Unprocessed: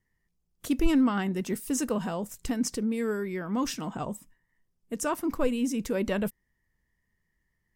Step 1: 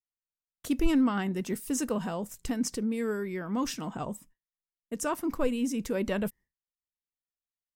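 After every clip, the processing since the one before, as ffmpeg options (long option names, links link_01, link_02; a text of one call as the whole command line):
ffmpeg -i in.wav -af "agate=range=-33dB:threshold=-46dB:ratio=3:detection=peak,volume=-1.5dB" out.wav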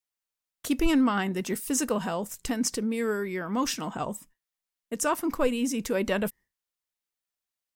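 ffmpeg -i in.wav -af "lowshelf=frequency=350:gain=-7,volume=6dB" out.wav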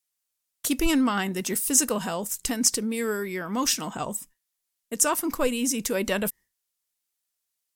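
ffmpeg -i in.wav -af "equalizer=frequency=11000:width_type=o:width=2.4:gain=10.5" out.wav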